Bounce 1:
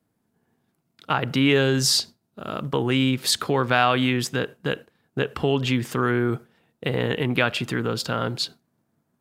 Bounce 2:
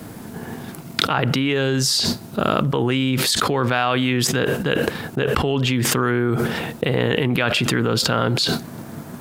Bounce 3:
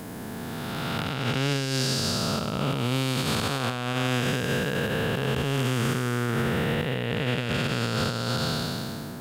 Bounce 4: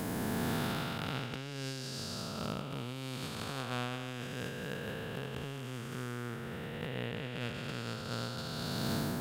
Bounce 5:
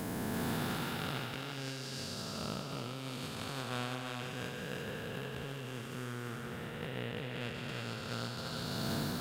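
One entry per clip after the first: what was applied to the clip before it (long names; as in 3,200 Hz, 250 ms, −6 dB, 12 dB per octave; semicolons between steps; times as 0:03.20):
envelope flattener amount 100%; level −3 dB
spectrum smeared in time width 688 ms; dynamic equaliser 330 Hz, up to −7 dB, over −39 dBFS, Q 2.1; brickwall limiter −17 dBFS, peak gain reduction 9 dB; level +1 dB
compressor whose output falls as the input rises −34 dBFS, ratio −1; level −5 dB
feedback echo with a high-pass in the loop 340 ms, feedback 38%, level −3.5 dB; level −2 dB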